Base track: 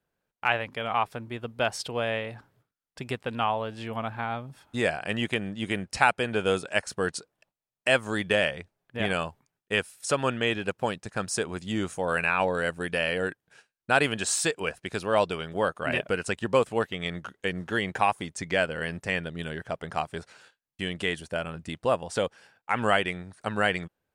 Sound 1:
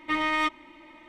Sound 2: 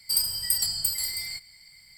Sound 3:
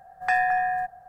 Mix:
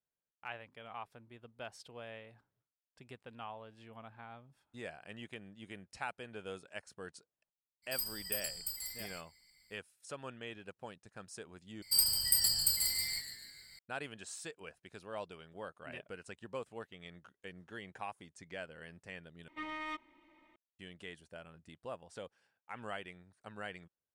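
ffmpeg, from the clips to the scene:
ffmpeg -i bed.wav -i cue0.wav -i cue1.wav -filter_complex "[2:a]asplit=2[link_01][link_02];[0:a]volume=-19.5dB[link_03];[link_01]aecho=1:1:4:0.49[link_04];[link_02]asplit=6[link_05][link_06][link_07][link_08][link_09][link_10];[link_06]adelay=145,afreqshift=-140,volume=-10dB[link_11];[link_07]adelay=290,afreqshift=-280,volume=-17.3dB[link_12];[link_08]adelay=435,afreqshift=-420,volume=-24.7dB[link_13];[link_09]adelay=580,afreqshift=-560,volume=-32dB[link_14];[link_10]adelay=725,afreqshift=-700,volume=-39.3dB[link_15];[link_05][link_11][link_12][link_13][link_14][link_15]amix=inputs=6:normalize=0[link_16];[1:a]highshelf=frequency=4700:gain=-4.5[link_17];[link_03]asplit=3[link_18][link_19][link_20];[link_18]atrim=end=11.824[link_21];[link_16]atrim=end=1.97,asetpts=PTS-STARTPTS,volume=-4dB[link_22];[link_19]atrim=start=13.786:end=19.484[link_23];[link_17]atrim=end=1.08,asetpts=PTS-STARTPTS,volume=-15.5dB[link_24];[link_20]atrim=start=20.556[link_25];[link_04]atrim=end=1.97,asetpts=PTS-STARTPTS,volume=-13.5dB,afade=type=in:duration=0.02,afade=type=out:start_time=1.95:duration=0.02,adelay=7820[link_26];[link_21][link_22]acrossfade=duration=0.004:curve1=hsin:curve2=hsin[link_27];[link_27][link_23]acrossfade=duration=0.004:curve1=hsin:curve2=hsin[link_28];[link_28][link_24]acrossfade=duration=0.004:curve1=hsin:curve2=hsin[link_29];[link_29][link_25]acrossfade=duration=0.004:curve1=hsin:curve2=hsin[link_30];[link_30][link_26]amix=inputs=2:normalize=0" out.wav

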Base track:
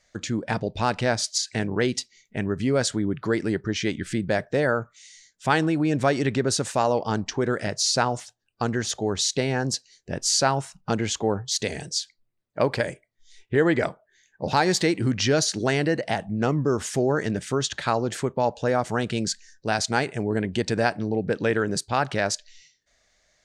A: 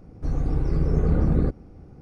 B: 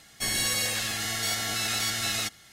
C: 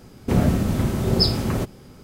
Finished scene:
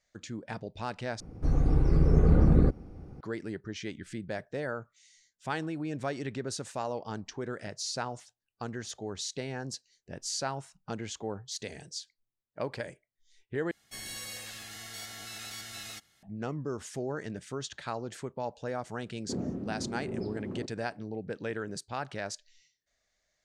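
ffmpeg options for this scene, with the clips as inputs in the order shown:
ffmpeg -i bed.wav -i cue0.wav -i cue1.wav -i cue2.wav -filter_complex "[0:a]volume=-12.5dB[link_01];[3:a]bandpass=frequency=320:width_type=q:width=1.4:csg=0[link_02];[link_01]asplit=3[link_03][link_04][link_05];[link_03]atrim=end=1.204[link_06];[1:a]atrim=end=2.01,asetpts=PTS-STARTPTS,volume=-0.5dB[link_07];[link_04]atrim=start=3.206:end=13.714[link_08];[2:a]atrim=end=2.52,asetpts=PTS-STARTPTS,volume=-14dB[link_09];[link_05]atrim=start=16.226[link_10];[link_02]atrim=end=2.03,asetpts=PTS-STARTPTS,volume=-10.5dB,afade=type=in:duration=0.004:curve=hsin,afade=type=out:start_time=2.026:duration=0.004:curve=hsin,adelay=19010[link_11];[link_06][link_07]acrossfade=duration=0.004:curve1=hsin:curve2=hsin[link_12];[link_12][link_08]acrossfade=duration=0.004:curve1=hsin:curve2=hsin[link_13];[link_13][link_09]acrossfade=duration=0.004:curve1=hsin:curve2=hsin[link_14];[link_14][link_10]acrossfade=duration=0.004:curve1=hsin:curve2=hsin[link_15];[link_15][link_11]amix=inputs=2:normalize=0" out.wav

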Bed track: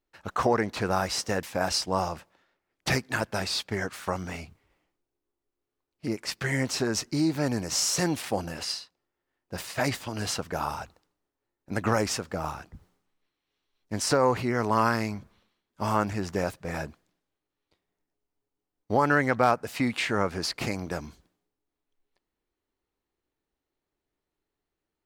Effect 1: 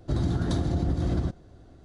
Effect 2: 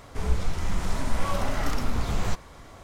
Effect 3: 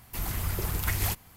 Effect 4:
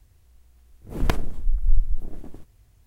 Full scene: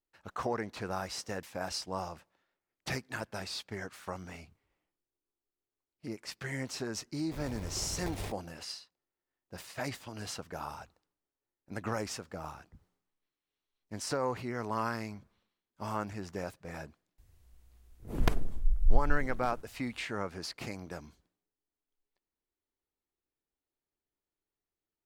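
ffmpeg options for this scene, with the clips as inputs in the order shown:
ffmpeg -i bed.wav -i cue0.wav -i cue1.wav -i cue2.wav -i cue3.wav -filter_complex "[0:a]volume=-10dB[link_01];[3:a]acrusher=samples=30:mix=1:aa=0.000001,atrim=end=1.36,asetpts=PTS-STARTPTS,volume=-11.5dB,afade=type=in:duration=0.004:curve=hsin,afade=type=out:start_time=1.356:duration=0.004:curve=hsin,adelay=7180[link_02];[4:a]atrim=end=2.86,asetpts=PTS-STARTPTS,volume=-5.5dB,afade=type=in:duration=0.004:curve=hsin,afade=type=out:start_time=2.856:duration=0.004:curve=hsin,adelay=17180[link_03];[link_01][link_02][link_03]amix=inputs=3:normalize=0" out.wav

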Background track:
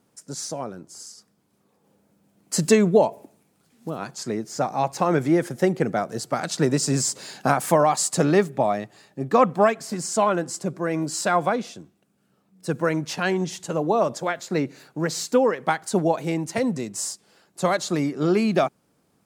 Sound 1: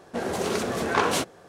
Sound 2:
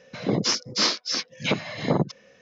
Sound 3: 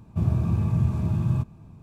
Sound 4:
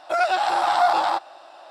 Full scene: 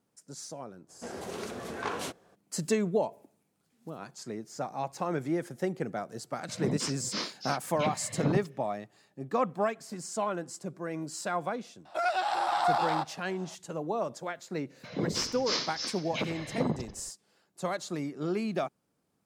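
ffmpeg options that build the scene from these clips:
ffmpeg -i bed.wav -i cue0.wav -i cue1.wav -i cue2.wav -i cue3.wav -filter_complex "[2:a]asplit=2[link_01][link_02];[0:a]volume=-11dB[link_03];[link_01]bass=frequency=250:gain=7,treble=frequency=4000:gain=-4[link_04];[link_02]asplit=6[link_05][link_06][link_07][link_08][link_09][link_10];[link_06]adelay=91,afreqshift=-44,volume=-11dB[link_11];[link_07]adelay=182,afreqshift=-88,volume=-16.8dB[link_12];[link_08]adelay=273,afreqshift=-132,volume=-22.7dB[link_13];[link_09]adelay=364,afreqshift=-176,volume=-28.5dB[link_14];[link_10]adelay=455,afreqshift=-220,volume=-34.4dB[link_15];[link_05][link_11][link_12][link_13][link_14][link_15]amix=inputs=6:normalize=0[link_16];[1:a]atrim=end=1.48,asetpts=PTS-STARTPTS,volume=-11.5dB,afade=type=in:duration=0.02,afade=type=out:start_time=1.46:duration=0.02,adelay=880[link_17];[link_04]atrim=end=2.41,asetpts=PTS-STARTPTS,volume=-11dB,afade=type=in:duration=0.004:curve=hsin,afade=type=out:start_time=2.406:duration=0.004:curve=hsin,adelay=6350[link_18];[4:a]atrim=end=1.7,asetpts=PTS-STARTPTS,volume=-8dB,afade=type=in:duration=0.004:curve=hsin,afade=type=out:start_time=1.696:duration=0.004:curve=hsin,adelay=11850[link_19];[link_16]atrim=end=2.41,asetpts=PTS-STARTPTS,volume=-9dB,afade=type=in:duration=0.004:curve=hsin,afade=type=out:start_time=2.406:duration=0.004:curve=hsin,adelay=14700[link_20];[link_03][link_17][link_18][link_19][link_20]amix=inputs=5:normalize=0" out.wav

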